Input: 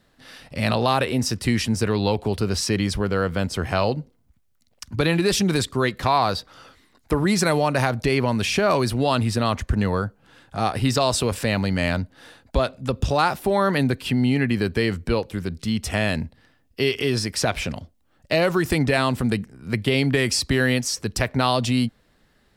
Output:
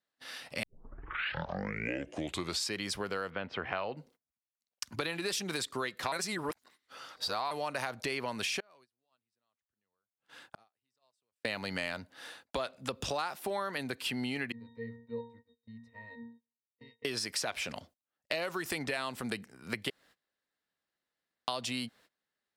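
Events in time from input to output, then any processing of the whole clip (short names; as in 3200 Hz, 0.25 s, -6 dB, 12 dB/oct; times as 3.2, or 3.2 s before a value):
0.63 tape start 2.13 s
3.3–3.97 LPF 3000 Hz 24 dB/oct
6.12–7.51 reverse
8.6–11.45 flipped gate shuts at -25 dBFS, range -36 dB
14.52–17.05 octave resonator A#, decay 0.49 s
19.9–21.48 room tone
whole clip: HPF 770 Hz 6 dB/oct; gate -55 dBFS, range -23 dB; compressor, threshold -32 dBFS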